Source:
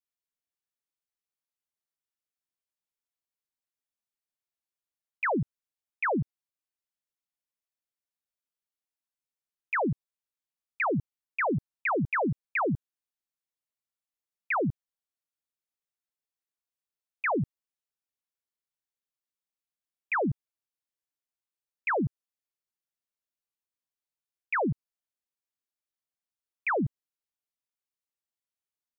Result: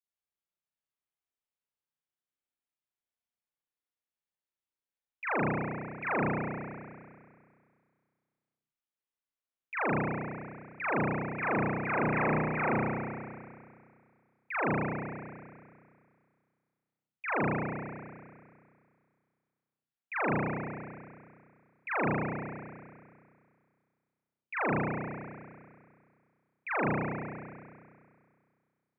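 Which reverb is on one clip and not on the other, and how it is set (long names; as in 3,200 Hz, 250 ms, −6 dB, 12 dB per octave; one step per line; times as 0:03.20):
spring reverb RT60 2.1 s, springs 32 ms, chirp 50 ms, DRR −10 dB
level −11 dB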